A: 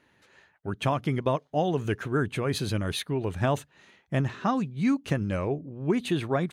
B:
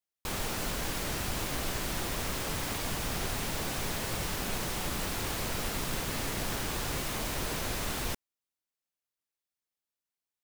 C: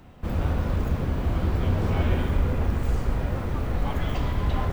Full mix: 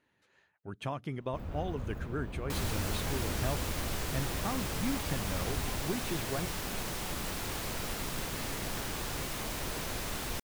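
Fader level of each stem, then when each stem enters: −10.5, −3.0, −14.5 decibels; 0.00, 2.25, 1.10 seconds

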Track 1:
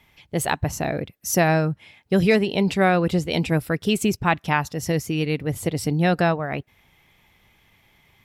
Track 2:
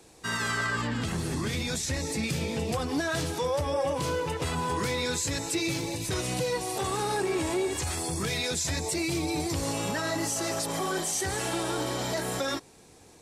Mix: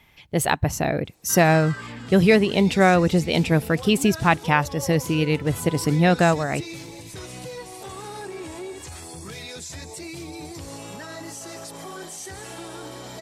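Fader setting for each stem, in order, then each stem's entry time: +2.0, −7.0 decibels; 0.00, 1.05 seconds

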